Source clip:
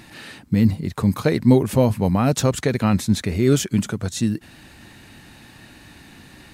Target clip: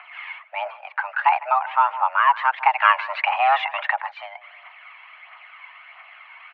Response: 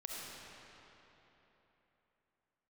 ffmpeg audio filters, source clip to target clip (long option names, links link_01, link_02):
-filter_complex "[0:a]asplit=3[link_01][link_02][link_03];[link_01]afade=type=out:start_time=2.8:duration=0.02[link_04];[link_02]acontrast=85,afade=type=in:start_time=2.8:duration=0.02,afade=type=out:start_time=3.98:duration=0.02[link_05];[link_03]afade=type=in:start_time=3.98:duration=0.02[link_06];[link_04][link_05][link_06]amix=inputs=3:normalize=0,asplit=2[link_07][link_08];[link_08]adelay=153,lowpass=frequency=1600:poles=1,volume=-17.5dB,asplit=2[link_09][link_10];[link_10]adelay=153,lowpass=frequency=1600:poles=1,volume=0.3,asplit=2[link_11][link_12];[link_12]adelay=153,lowpass=frequency=1600:poles=1,volume=0.3[link_13];[link_07][link_09][link_11][link_13]amix=inputs=4:normalize=0,aphaser=in_gain=1:out_gain=1:delay=1.8:decay=0.43:speed=1.5:type=triangular,highpass=frequency=480:width_type=q:width=0.5412,highpass=frequency=480:width_type=q:width=1.307,lowpass=frequency=2300:width_type=q:width=0.5176,lowpass=frequency=2300:width_type=q:width=0.7071,lowpass=frequency=2300:width_type=q:width=1.932,afreqshift=390,volume=5.5dB"